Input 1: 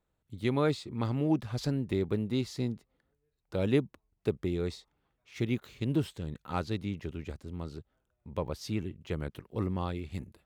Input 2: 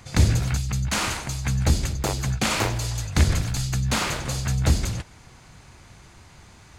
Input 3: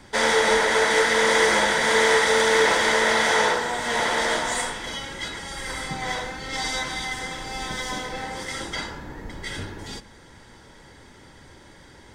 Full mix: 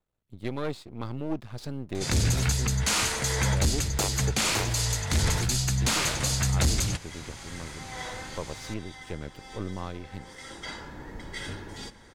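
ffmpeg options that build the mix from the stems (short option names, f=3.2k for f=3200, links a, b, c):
-filter_complex "[0:a]aeval=exprs='if(lt(val(0),0),0.251*val(0),val(0))':c=same,volume=-0.5dB,asplit=2[a][b];[1:a]aeval=exprs='0.501*sin(PI/2*1.78*val(0)/0.501)':c=same,equalizer=f=7.8k:w=0.31:g=7.5,adelay=1950,volume=-6.5dB[c];[2:a]alimiter=limit=-12.5dB:level=0:latency=1:release=145,adelay=1900,volume=-4dB[d];[b]apad=whole_len=619230[e];[d][e]sidechaincompress=threshold=-42dB:ratio=6:attack=5.7:release=879[f];[a][c][f]amix=inputs=3:normalize=0,alimiter=limit=-15.5dB:level=0:latency=1:release=391"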